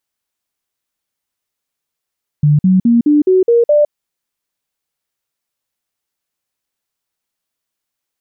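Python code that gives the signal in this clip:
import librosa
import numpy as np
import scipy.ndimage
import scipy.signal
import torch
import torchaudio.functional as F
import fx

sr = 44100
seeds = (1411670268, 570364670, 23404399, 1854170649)

y = fx.stepped_sweep(sr, from_hz=148.0, direction='up', per_octave=3, tones=7, dwell_s=0.16, gap_s=0.05, level_db=-6.5)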